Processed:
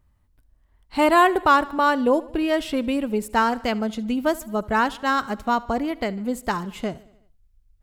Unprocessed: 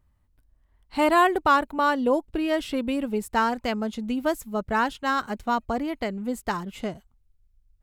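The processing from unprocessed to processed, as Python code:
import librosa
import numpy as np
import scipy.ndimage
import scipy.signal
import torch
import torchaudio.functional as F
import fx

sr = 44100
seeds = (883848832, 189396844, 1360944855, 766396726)

y = fx.echo_feedback(x, sr, ms=74, feedback_pct=59, wet_db=-21)
y = y * 10.0 ** (3.0 / 20.0)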